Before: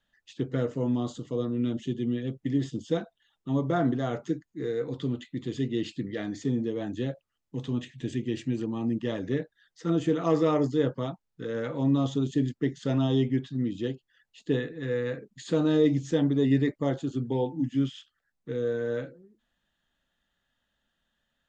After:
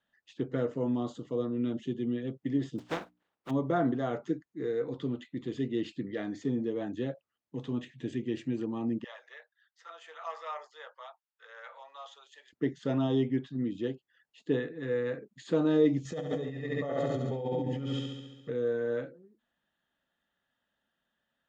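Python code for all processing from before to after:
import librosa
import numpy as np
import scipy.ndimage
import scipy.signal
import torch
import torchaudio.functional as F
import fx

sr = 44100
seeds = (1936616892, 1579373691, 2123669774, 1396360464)

y = fx.spec_flatten(x, sr, power=0.24, at=(2.78, 3.49), fade=0.02)
y = fx.lowpass(y, sr, hz=1100.0, slope=6, at=(2.78, 3.49), fade=0.02)
y = fx.hum_notches(y, sr, base_hz=60, count=5, at=(2.78, 3.49), fade=0.02)
y = fx.chain(y, sr, fx.bessel_highpass(hz=1200.0, order=8),
    fx.high_shelf(hz=2600.0, db=-5.5), at=(9.04, 12.53))
y = fx.chain(y, sr, fx.comb(ms=1.6, depth=0.68),
    fx.room_flutter(wall_m=11.8, rt60_s=1.2),
    fx.over_compress(threshold_db=-30.0, ratio=-1.0), at=(16.05, 18.5))
y = fx.highpass(y, sr, hz=240.0, slope=6)
y = fx.high_shelf(y, sr, hz=3300.0, db=-11.5)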